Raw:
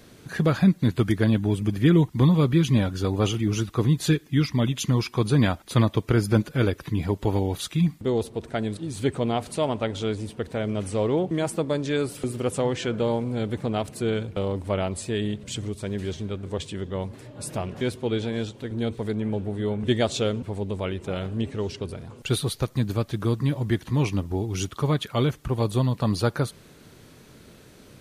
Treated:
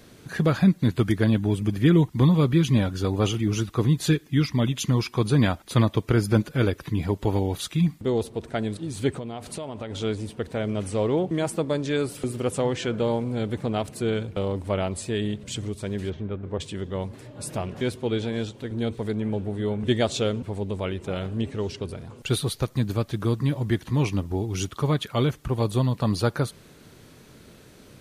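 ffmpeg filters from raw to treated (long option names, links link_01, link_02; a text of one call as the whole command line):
ffmpeg -i in.wav -filter_complex "[0:a]asplit=3[link_01][link_02][link_03];[link_01]afade=type=out:start_time=9.17:duration=0.02[link_04];[link_02]acompressor=threshold=-29dB:ratio=12:attack=3.2:release=140:knee=1:detection=peak,afade=type=in:start_time=9.17:duration=0.02,afade=type=out:start_time=9.9:duration=0.02[link_05];[link_03]afade=type=in:start_time=9.9:duration=0.02[link_06];[link_04][link_05][link_06]amix=inputs=3:normalize=0,asplit=3[link_07][link_08][link_09];[link_07]afade=type=out:start_time=16.09:duration=0.02[link_10];[link_08]lowpass=2000,afade=type=in:start_time=16.09:duration=0.02,afade=type=out:start_time=16.59:duration=0.02[link_11];[link_09]afade=type=in:start_time=16.59:duration=0.02[link_12];[link_10][link_11][link_12]amix=inputs=3:normalize=0" out.wav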